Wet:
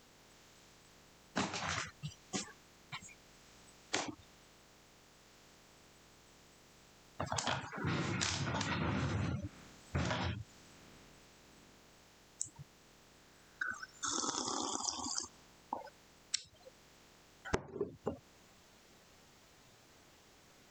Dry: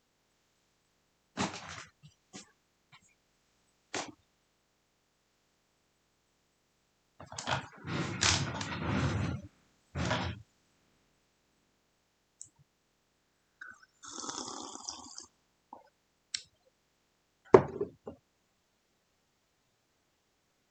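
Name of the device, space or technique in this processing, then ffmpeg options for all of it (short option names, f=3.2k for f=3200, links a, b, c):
serial compression, leveller first: -af "acompressor=threshold=-35dB:ratio=2,acompressor=threshold=-47dB:ratio=6,volume=12.5dB"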